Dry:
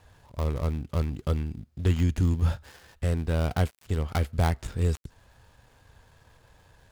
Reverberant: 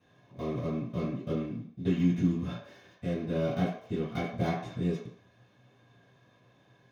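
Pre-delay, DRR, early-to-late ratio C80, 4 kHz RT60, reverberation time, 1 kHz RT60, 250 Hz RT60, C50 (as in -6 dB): 3 ms, -13.0 dB, 7.5 dB, 0.65 s, 0.60 s, 0.65 s, 0.40 s, 4.0 dB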